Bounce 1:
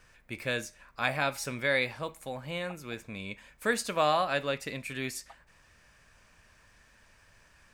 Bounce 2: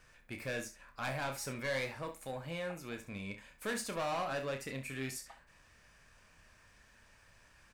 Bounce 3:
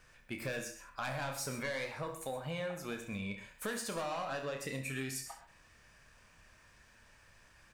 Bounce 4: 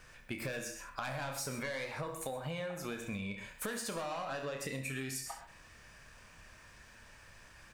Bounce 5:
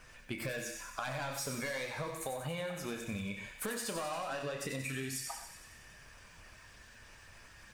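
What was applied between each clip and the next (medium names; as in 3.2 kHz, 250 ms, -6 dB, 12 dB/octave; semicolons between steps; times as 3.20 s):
dynamic bell 3.5 kHz, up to -5 dB, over -49 dBFS, Q 1.4; saturation -30 dBFS, distortion -7 dB; early reflections 30 ms -8.5 dB, 67 ms -12.5 dB; trim -3 dB
spectral noise reduction 6 dB; compression, threshold -43 dBFS, peak gain reduction 10 dB; gated-style reverb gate 150 ms rising, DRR 9.5 dB; trim +6.5 dB
compression, threshold -42 dBFS, peak gain reduction 7.5 dB; trim +5.5 dB
coarse spectral quantiser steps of 15 dB; on a send: feedback echo behind a high-pass 92 ms, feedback 66%, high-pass 2 kHz, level -7 dB; on the sum: trim +1 dB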